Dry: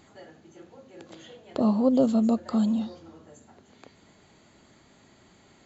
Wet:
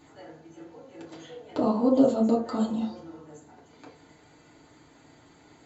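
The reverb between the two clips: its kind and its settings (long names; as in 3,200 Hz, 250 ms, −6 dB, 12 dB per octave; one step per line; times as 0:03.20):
feedback delay network reverb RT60 0.42 s, low-frequency decay 0.7×, high-frequency decay 0.45×, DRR −5.5 dB
level −4.5 dB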